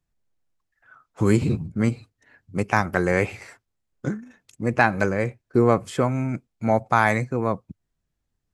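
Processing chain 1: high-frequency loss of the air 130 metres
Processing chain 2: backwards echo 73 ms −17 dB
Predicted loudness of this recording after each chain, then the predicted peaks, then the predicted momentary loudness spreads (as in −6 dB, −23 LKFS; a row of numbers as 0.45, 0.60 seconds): −24.0, −23.5 LKFS; −3.0, −2.5 dBFS; 11, 12 LU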